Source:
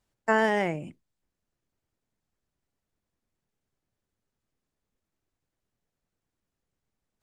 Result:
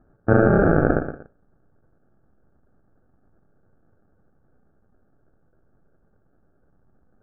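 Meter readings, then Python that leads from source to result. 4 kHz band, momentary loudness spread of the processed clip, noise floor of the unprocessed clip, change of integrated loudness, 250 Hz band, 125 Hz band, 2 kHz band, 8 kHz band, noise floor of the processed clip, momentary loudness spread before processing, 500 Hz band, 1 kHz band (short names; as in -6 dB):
under -30 dB, 9 LU, under -85 dBFS, +7.0 dB, +12.5 dB, +19.0 dB, +2.5 dB, under -25 dB, -63 dBFS, 10 LU, +9.0 dB, +2.5 dB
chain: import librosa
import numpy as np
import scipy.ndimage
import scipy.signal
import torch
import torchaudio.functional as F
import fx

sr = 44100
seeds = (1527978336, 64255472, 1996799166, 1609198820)

p1 = fx.rattle_buzz(x, sr, strikes_db=-43.0, level_db=-15.0)
p2 = p1 + fx.echo_feedback(p1, sr, ms=118, feedback_pct=34, wet_db=-13.0, dry=0)
p3 = fx.sample_hold(p2, sr, seeds[0], rate_hz=1000.0, jitter_pct=0)
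p4 = fx.over_compress(p3, sr, threshold_db=-36.0, ratio=-1.0)
p5 = p3 + (p4 * 10.0 ** (2.0 / 20.0))
p6 = scipy.signal.sosfilt(scipy.signal.cheby1(5, 1.0, 1600.0, 'lowpass', fs=sr, output='sos'), p5)
p7 = fx.rev_schroeder(p6, sr, rt60_s=0.37, comb_ms=30, drr_db=18.0)
y = p7 * 10.0 ** (7.0 / 20.0)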